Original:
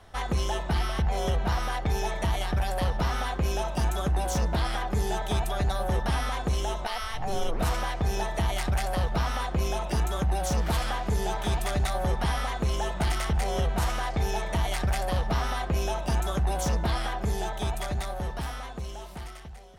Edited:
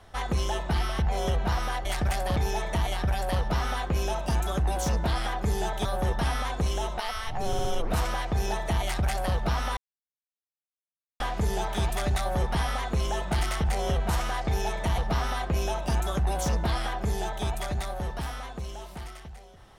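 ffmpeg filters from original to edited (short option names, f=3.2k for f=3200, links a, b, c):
-filter_complex "[0:a]asplit=10[a][b][c][d][e][f][g][h][i][j];[a]atrim=end=1.852[k];[b]atrim=start=14.668:end=15.182[l];[c]atrim=start=1.848:end=5.342[m];[d]atrim=start=5.718:end=7.402[n];[e]atrim=start=7.338:end=7.402[o];[f]atrim=start=7.338:end=7.402[p];[g]atrim=start=7.338:end=9.46,asetpts=PTS-STARTPTS,afade=t=out:st=2.118:d=0.004:c=hsin[q];[h]atrim=start=9.46:end=10.89,asetpts=PTS-STARTPTS,volume=0[r];[i]atrim=start=10.89:end=14.672,asetpts=PTS-STARTPTS,afade=t=in:d=0.004:c=hsin[s];[j]atrim=start=15.178[t];[k][l]acrossfade=d=0.004:c1=hsin:c2=hsin[u];[u][m]acrossfade=d=0.004:c1=hsin:c2=hsin[v];[v][n]acrossfade=d=0.004:c1=hsin:c2=hsin[w];[w][o]acrossfade=d=0.004:c1=hsin:c2=hsin[x];[x][p]acrossfade=d=0.004:c1=hsin:c2=hsin[y];[q][r][s]concat=n=3:v=0:a=1[z];[y][z]acrossfade=d=0.004:c1=hsin:c2=hsin[aa];[aa][t]acrossfade=d=0.004:c1=hsin:c2=hsin"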